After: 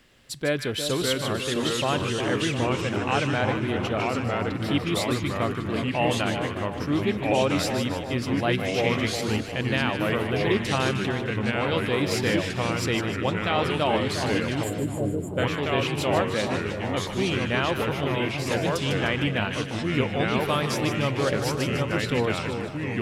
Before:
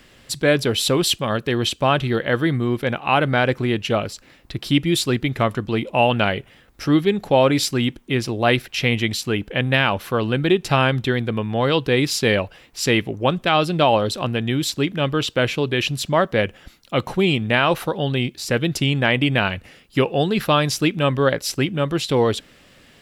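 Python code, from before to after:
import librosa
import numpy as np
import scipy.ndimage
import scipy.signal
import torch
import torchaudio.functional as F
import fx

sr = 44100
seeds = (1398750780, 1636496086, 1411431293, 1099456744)

y = fx.echo_pitch(x, sr, ms=549, semitones=-2, count=3, db_per_echo=-3.0)
y = fx.spec_erase(y, sr, start_s=14.63, length_s=0.75, low_hz=740.0, high_hz=6800.0)
y = fx.echo_split(y, sr, split_hz=1100.0, low_ms=354, high_ms=152, feedback_pct=52, wet_db=-8)
y = F.gain(torch.from_numpy(y), -8.5).numpy()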